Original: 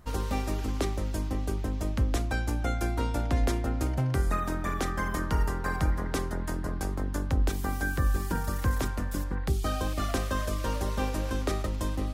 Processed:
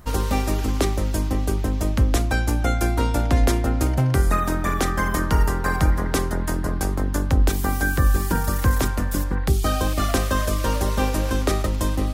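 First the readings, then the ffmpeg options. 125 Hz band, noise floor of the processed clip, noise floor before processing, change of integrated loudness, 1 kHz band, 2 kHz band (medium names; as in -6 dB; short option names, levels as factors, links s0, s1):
+8.0 dB, -24 dBFS, -32 dBFS, +8.0 dB, +8.0 dB, +8.0 dB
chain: -af "highshelf=f=9200:g=5.5,volume=2.51"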